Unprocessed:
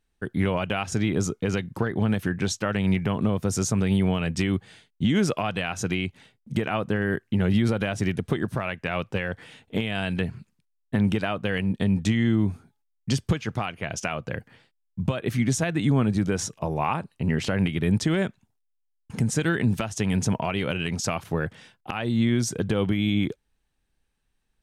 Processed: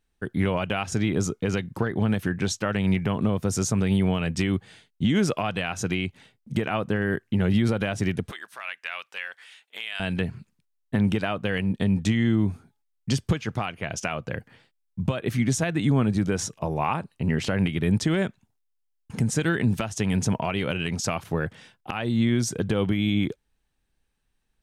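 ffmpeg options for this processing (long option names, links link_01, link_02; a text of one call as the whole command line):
ffmpeg -i in.wav -filter_complex "[0:a]asettb=1/sr,asplit=3[link_01][link_02][link_03];[link_01]atrim=end=8.314[link_04];[link_02]atrim=start=8.31:end=10,asetpts=PTS-STARTPTS,afade=type=in:duration=0.004:curve=qsin,afade=type=out:start_time=1.686:duration=0.004:curve=qsin,highpass=1500[link_05];[link_03]atrim=start=9.996[link_06];[link_04][link_05]acrossfade=duration=0.004:curve1=hsin:curve2=qsin[link_07];[link_07][link_06]acrossfade=duration=0.004:curve1=qsin:curve2=hsin" out.wav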